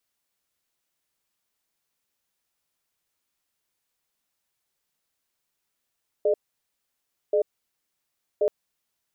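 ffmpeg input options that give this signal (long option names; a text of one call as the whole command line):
ffmpeg -f lavfi -i "aevalsrc='0.0891*(sin(2*PI*424*t)+sin(2*PI*604*t))*clip(min(mod(t,1.08),0.09-mod(t,1.08))/0.005,0,1)':duration=2.23:sample_rate=44100" out.wav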